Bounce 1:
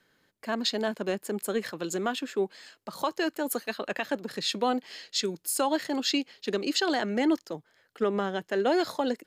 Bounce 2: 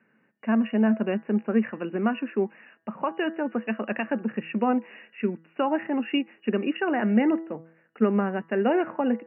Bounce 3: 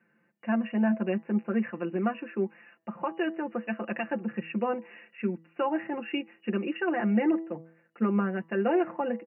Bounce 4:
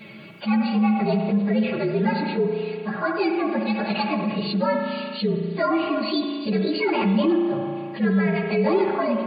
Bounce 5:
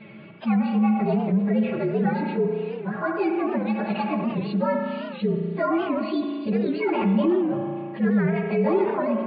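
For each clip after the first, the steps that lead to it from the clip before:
de-hum 163.6 Hz, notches 12; FFT band-pass 110–2900 Hz; peaking EQ 220 Hz +13 dB 0.28 oct; trim +1.5 dB
comb 5.8 ms, depth 82%; trim -5.5 dB
frequency axis rescaled in octaves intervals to 120%; on a send at -6 dB: reverberation RT60 1.2 s, pre-delay 64 ms; on the sum: level flattener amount 50%; trim +5 dB
distance through air 430 m; warped record 78 rpm, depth 160 cents

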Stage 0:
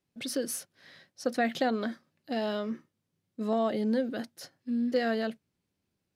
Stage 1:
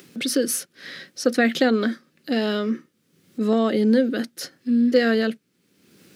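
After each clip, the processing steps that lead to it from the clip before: high-order bell 790 Hz -8.5 dB 1 oct; in parallel at +2.5 dB: upward compressor, threshold -34 dBFS; on the sum: Chebyshev high-pass 220 Hz, order 2; trim +4 dB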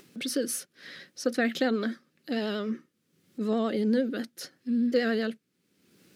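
vibrato 11 Hz 49 cents; trim -7.5 dB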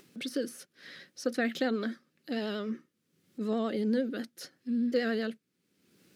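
de-esser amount 75%; trim -3.5 dB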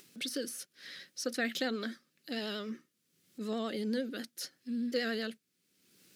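treble shelf 2.2 kHz +11.5 dB; trim -5.5 dB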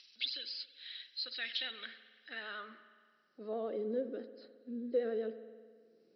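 knee-point frequency compression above 3.8 kHz 4:1; band-pass sweep 3.2 kHz -> 440 Hz, 1.55–3.86 s; spring tank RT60 1.8 s, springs 54 ms, chirp 45 ms, DRR 12 dB; trim +3.5 dB

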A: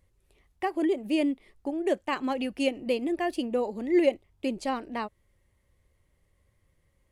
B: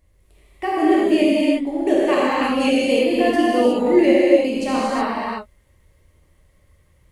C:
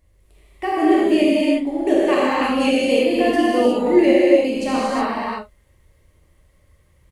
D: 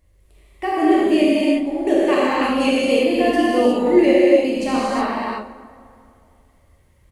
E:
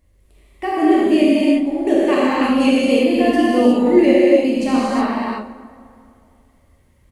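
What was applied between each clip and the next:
gated-style reverb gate 390 ms flat, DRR -8 dB; trim +3 dB
doubling 42 ms -12 dB
plate-style reverb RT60 2.5 s, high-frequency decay 0.55×, DRR 12.5 dB
peaking EQ 240 Hz +6.5 dB 0.51 oct

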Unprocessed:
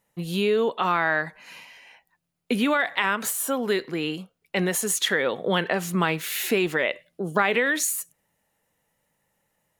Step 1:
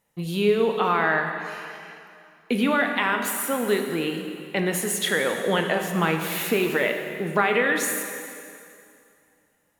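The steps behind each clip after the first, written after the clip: dynamic bell 6.1 kHz, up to -5 dB, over -41 dBFS, Q 0.8; plate-style reverb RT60 2.5 s, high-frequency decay 0.9×, DRR 4 dB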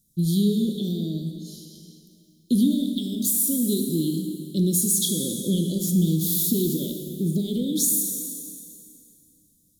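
Chebyshev band-stop 480–3300 Hz, order 5; static phaser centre 1.1 kHz, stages 4; in parallel at +1.5 dB: peak limiter -25.5 dBFS, peak gain reduction 8 dB; on the sum: trim +4 dB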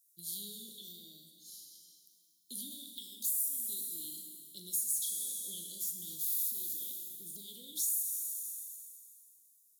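differentiator; compression 2:1, threshold -32 dBFS, peak gain reduction 9 dB; on a send: flutter echo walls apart 6.8 m, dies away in 0.21 s; on the sum: trim -5 dB

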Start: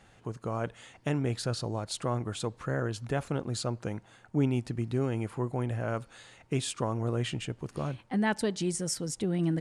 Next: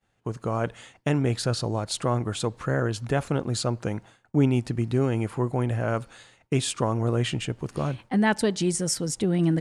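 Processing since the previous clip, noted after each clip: expander -46 dBFS; trim +6 dB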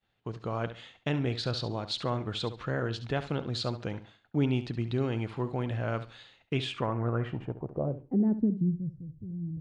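flutter echo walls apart 11.9 m, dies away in 0.33 s; low-pass sweep 3.8 kHz -> 100 Hz, 6.46–9.10 s; trim -6.5 dB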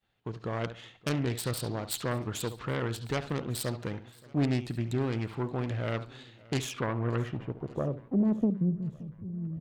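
self-modulated delay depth 0.35 ms; feedback delay 574 ms, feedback 59%, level -23 dB

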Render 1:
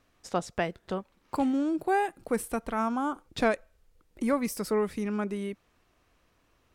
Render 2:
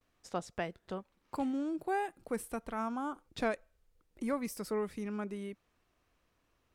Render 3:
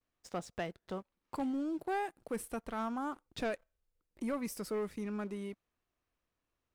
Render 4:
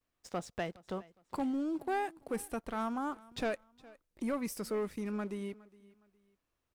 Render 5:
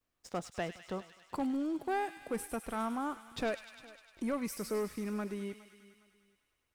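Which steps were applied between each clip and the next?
gate with hold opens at -60 dBFS; trim -7.5 dB
waveshaping leveller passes 2; trim -7.5 dB
feedback delay 413 ms, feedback 31%, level -22 dB; trim +1.5 dB
feedback echo behind a high-pass 101 ms, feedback 76%, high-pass 2 kHz, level -8 dB

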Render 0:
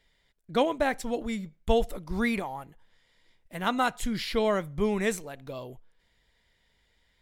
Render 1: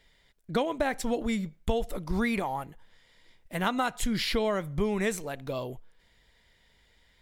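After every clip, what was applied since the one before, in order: compression 6:1, threshold -29 dBFS, peak gain reduction 11 dB; trim +5 dB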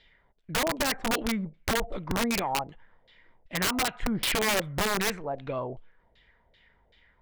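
LFO low-pass saw down 2.6 Hz 570–4000 Hz; integer overflow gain 20 dB

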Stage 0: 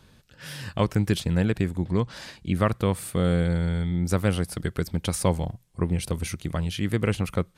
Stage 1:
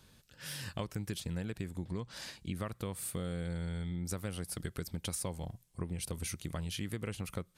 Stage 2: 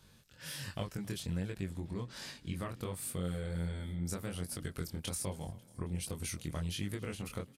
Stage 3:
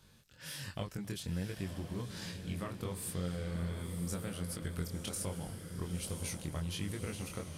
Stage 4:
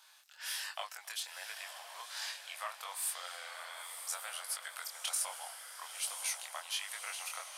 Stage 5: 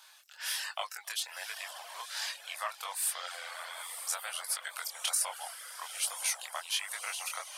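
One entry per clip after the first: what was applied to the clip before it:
treble shelf 4.4 kHz +9 dB; compression, threshold -27 dBFS, peak gain reduction 11 dB; trim -7.5 dB
frequency-shifting echo 272 ms, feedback 64%, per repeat +31 Hz, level -22.5 dB; chorus 1.3 Hz, delay 20 ms, depth 5.6 ms; trim +2.5 dB
echo that smears into a reverb 1004 ms, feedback 50%, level -7 dB; trim -1 dB
steep high-pass 690 Hz 48 dB/octave; trim +6 dB
reverb removal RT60 0.52 s; trim +5 dB

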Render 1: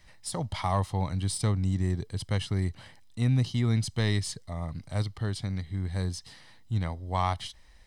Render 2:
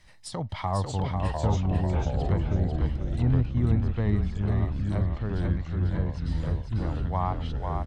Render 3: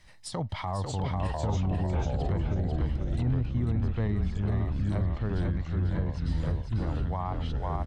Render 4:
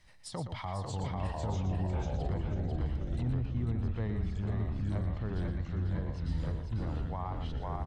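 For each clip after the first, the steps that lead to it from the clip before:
low-pass that closes with the level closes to 1.2 kHz, closed at -25.5 dBFS; ever faster or slower copies 580 ms, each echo -3 st, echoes 2; on a send: frequency-shifting echo 495 ms, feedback 31%, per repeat -35 Hz, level -4.5 dB
peak limiter -20 dBFS, peak gain reduction 8 dB
delay 118 ms -9 dB; trim -5.5 dB

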